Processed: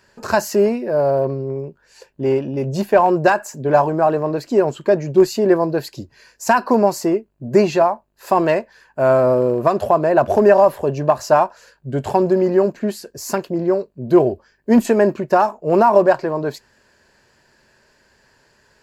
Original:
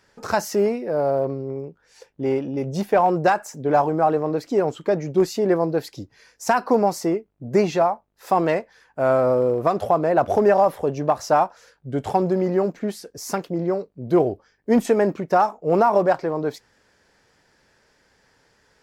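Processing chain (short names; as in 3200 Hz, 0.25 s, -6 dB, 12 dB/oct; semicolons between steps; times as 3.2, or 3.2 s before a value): ripple EQ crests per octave 1.4, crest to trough 6 dB; gain +3.5 dB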